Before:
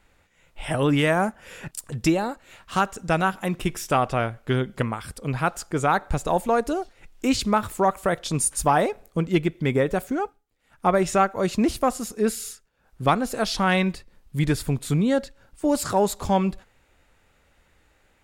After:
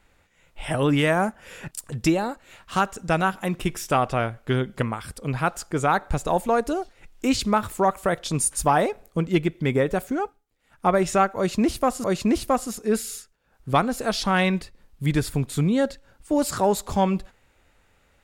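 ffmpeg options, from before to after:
ffmpeg -i in.wav -filter_complex "[0:a]asplit=2[link_01][link_02];[link_01]atrim=end=12.042[link_03];[link_02]atrim=start=11.368[link_04];[link_03][link_04]acrossfade=duration=0.004:curve1=hsin:curve2=hsin" out.wav

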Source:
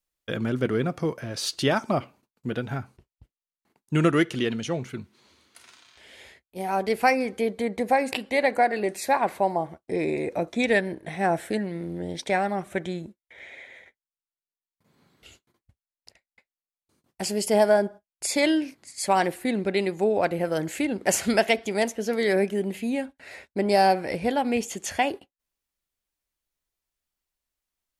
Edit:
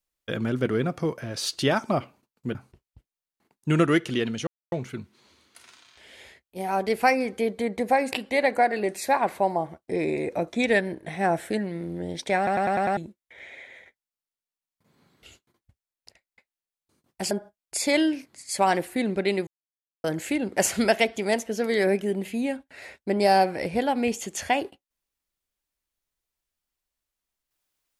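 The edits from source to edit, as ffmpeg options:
ffmpeg -i in.wav -filter_complex "[0:a]asplit=12[link_01][link_02][link_03][link_04][link_05][link_06][link_07][link_08][link_09][link_10][link_11][link_12];[link_01]atrim=end=2.552[link_13];[link_02]atrim=start=2.798:end=4.72,asetpts=PTS-STARTPTS,afade=type=out:start_time=1.918:duration=0.004:curve=hsin,apad=pad_dur=0.25[link_14];[link_03]atrim=start=4.72:end=12.472,asetpts=PTS-STARTPTS,afade=type=in:duration=0.004:curve=hsin[link_15];[link_04]atrim=start=12.368:end=12.472[link_16];[link_05]atrim=start=12.368:end=12.472[link_17];[link_06]atrim=start=12.368:end=12.472[link_18];[link_07]atrim=start=12.368:end=12.472[link_19];[link_08]atrim=start=12.368:end=12.472[link_20];[link_09]atrim=start=12.968:end=17.312[link_21];[link_10]atrim=start=17.798:end=19.96,asetpts=PTS-STARTPTS,afade=type=out:start_time=2.158:duration=0.004:curve=hsin[link_22];[link_11]atrim=start=19.96:end=20.53,asetpts=PTS-STARTPTS,volume=0[link_23];[link_12]atrim=start=20.53,asetpts=PTS-STARTPTS,afade=type=in:duration=0.004:curve=hsin[link_24];[link_14][link_15]concat=n=2:v=0:a=1[link_25];[link_13][link_25]acrossfade=duration=0.004:curve1=hsin:curve2=hsin[link_26];[link_26][link_16]acrossfade=duration=0.004:curve1=hsin:curve2=hsin[link_27];[link_27][link_17]acrossfade=duration=0.004:curve1=hsin:curve2=hsin[link_28];[link_28][link_18]acrossfade=duration=0.004:curve1=hsin:curve2=hsin[link_29];[link_29][link_19]acrossfade=duration=0.004:curve1=hsin:curve2=hsin[link_30];[link_30][link_20]acrossfade=duration=0.004:curve1=hsin:curve2=hsin[link_31];[link_31][link_21]acrossfade=duration=0.004:curve1=hsin:curve2=hsin[link_32];[link_22][link_23][link_24]concat=n=3:v=0:a=1[link_33];[link_32][link_33]acrossfade=duration=0.004:curve1=hsin:curve2=hsin" out.wav

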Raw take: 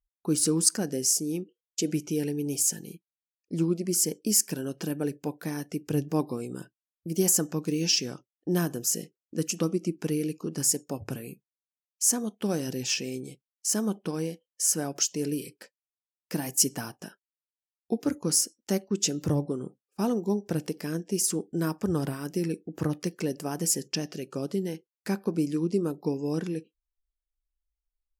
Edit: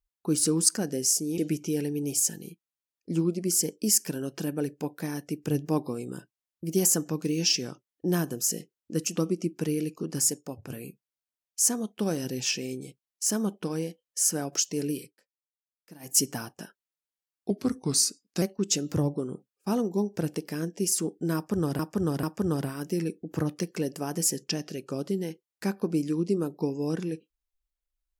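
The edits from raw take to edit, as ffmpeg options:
ffmpeg -i in.wav -filter_complex "[0:a]asplit=9[link_01][link_02][link_03][link_04][link_05][link_06][link_07][link_08][link_09];[link_01]atrim=end=1.382[link_10];[link_02]atrim=start=1.808:end=11.13,asetpts=PTS-STARTPTS,afade=type=out:start_time=8.852:duration=0.47:silence=0.375837[link_11];[link_03]atrim=start=11.13:end=15.56,asetpts=PTS-STARTPTS,afade=type=in:duration=0.004:curve=hsin:silence=0.375837,afade=type=out:start_time=4.27:duration=0.16:silence=0.11885[link_12];[link_04]atrim=start=15.56:end=16.42,asetpts=PTS-STARTPTS,volume=-18.5dB[link_13];[link_05]atrim=start=16.42:end=17.934,asetpts=PTS-STARTPTS,afade=type=in:duration=0.16:silence=0.11885[link_14];[link_06]atrim=start=17.93:end=18.74,asetpts=PTS-STARTPTS,asetrate=38808,aresample=44100,atrim=end_sample=40592,asetpts=PTS-STARTPTS[link_15];[link_07]atrim=start=18.736:end=22.112[link_16];[link_08]atrim=start=21.668:end=22.112[link_17];[link_09]atrim=start=21.668[link_18];[link_11][link_12][link_13][link_14]concat=n=4:v=0:a=1[link_19];[link_10][link_19]acrossfade=duration=0.004:curve1=hsin:curve2=hsin[link_20];[link_20][link_15]acrossfade=duration=0.004:curve1=hsin:curve2=hsin[link_21];[link_21][link_16]acrossfade=duration=0.004:curve1=hsin:curve2=hsin[link_22];[link_22][link_17]acrossfade=duration=0.004:curve1=hsin:curve2=hsin[link_23];[link_23][link_18]acrossfade=duration=0.004:curve1=hsin:curve2=hsin" out.wav

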